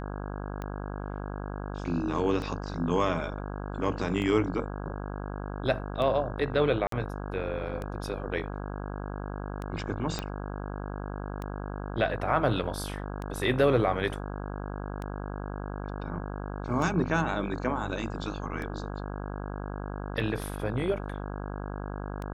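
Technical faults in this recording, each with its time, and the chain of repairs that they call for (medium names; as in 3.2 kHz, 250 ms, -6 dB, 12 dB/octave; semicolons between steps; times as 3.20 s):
buzz 50 Hz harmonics 33 -36 dBFS
tick 33 1/3 rpm -23 dBFS
6.87–6.92 s: dropout 53 ms
10.19 s: pop -16 dBFS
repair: de-click; de-hum 50 Hz, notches 33; interpolate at 6.87 s, 53 ms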